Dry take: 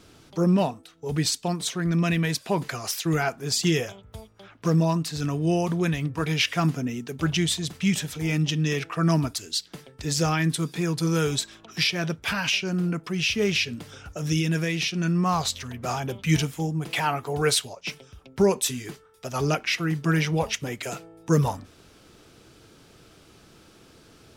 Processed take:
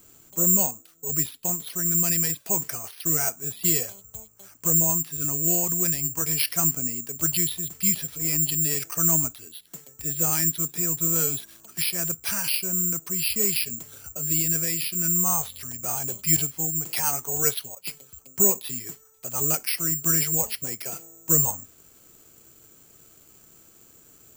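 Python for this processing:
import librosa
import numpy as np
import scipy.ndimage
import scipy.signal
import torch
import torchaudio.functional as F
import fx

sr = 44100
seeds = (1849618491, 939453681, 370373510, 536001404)

y = (np.kron(scipy.signal.resample_poly(x, 1, 6), np.eye(6)[0]) * 6)[:len(x)]
y = y * librosa.db_to_amplitude(-7.5)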